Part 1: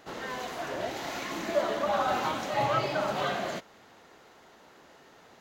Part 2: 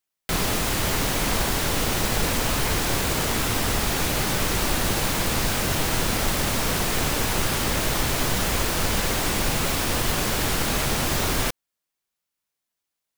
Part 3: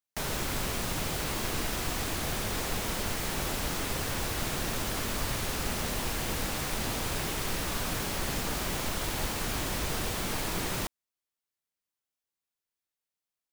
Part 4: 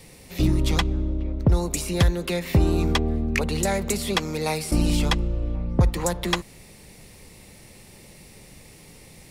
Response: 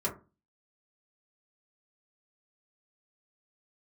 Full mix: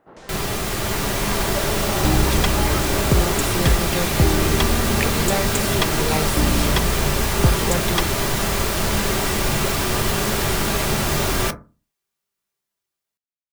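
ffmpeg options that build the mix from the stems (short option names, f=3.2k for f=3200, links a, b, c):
-filter_complex "[0:a]lowpass=1.3k,volume=-4.5dB[a];[1:a]volume=-6dB,asplit=2[b][c];[c]volume=-5dB[d];[2:a]lowpass=f=7.7k:w=0.5412,lowpass=f=7.7k:w=1.3066,volume=-12dB[e];[3:a]adelay=1650,volume=-2.5dB[f];[4:a]atrim=start_sample=2205[g];[d][g]afir=irnorm=-1:irlink=0[h];[a][b][e][f][h]amix=inputs=5:normalize=0,dynaudnorm=f=150:g=13:m=4dB"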